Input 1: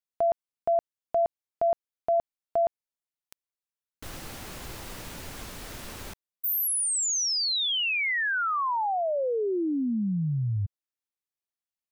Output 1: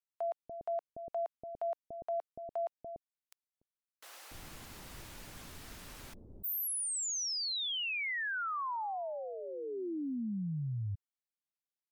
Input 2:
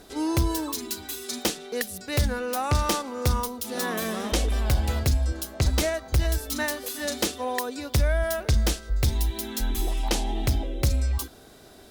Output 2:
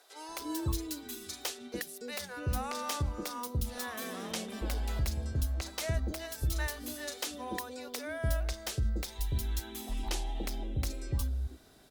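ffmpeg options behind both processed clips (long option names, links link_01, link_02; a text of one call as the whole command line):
ffmpeg -i in.wav -filter_complex "[0:a]acrossover=split=510[link_01][link_02];[link_01]adelay=290[link_03];[link_03][link_02]amix=inputs=2:normalize=0,volume=-8.5dB" -ar 48000 -c:a libmp3lame -b:a 112k out.mp3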